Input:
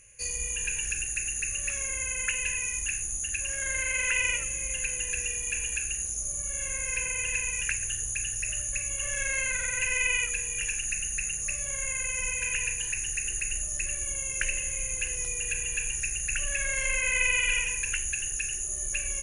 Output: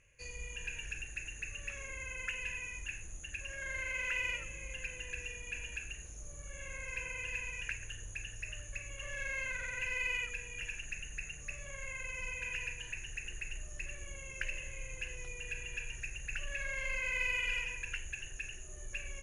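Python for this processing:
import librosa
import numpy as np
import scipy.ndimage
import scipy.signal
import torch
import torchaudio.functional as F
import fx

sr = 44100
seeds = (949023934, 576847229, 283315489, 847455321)

p1 = scipy.signal.sosfilt(scipy.signal.butter(2, 3300.0, 'lowpass', fs=sr, output='sos'), x)
p2 = 10.0 ** (-30.5 / 20.0) * np.tanh(p1 / 10.0 ** (-30.5 / 20.0))
p3 = p1 + F.gain(torch.from_numpy(p2), -6.5).numpy()
y = F.gain(torch.from_numpy(p3), -9.0).numpy()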